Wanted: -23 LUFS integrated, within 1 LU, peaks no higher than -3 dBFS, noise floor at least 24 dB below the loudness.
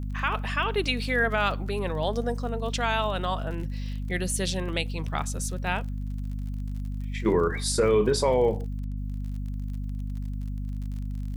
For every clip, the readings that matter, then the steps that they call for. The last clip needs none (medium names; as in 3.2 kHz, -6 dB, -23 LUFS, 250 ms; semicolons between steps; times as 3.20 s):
tick rate 40 per s; hum 50 Hz; highest harmonic 250 Hz; hum level -29 dBFS; loudness -28.5 LUFS; peak level -11.5 dBFS; loudness target -23.0 LUFS
-> de-click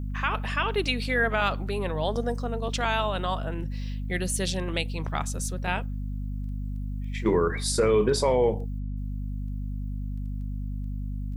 tick rate 0.79 per s; hum 50 Hz; highest harmonic 250 Hz; hum level -29 dBFS
-> hum notches 50/100/150/200/250 Hz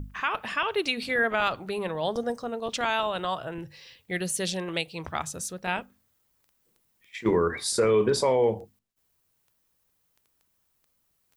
hum not found; loudness -27.5 LUFS; peak level -13.0 dBFS; loudness target -23.0 LUFS
-> trim +4.5 dB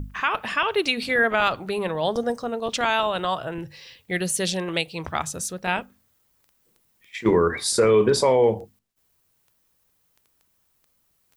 loudness -23.0 LUFS; peak level -8.5 dBFS; noise floor -68 dBFS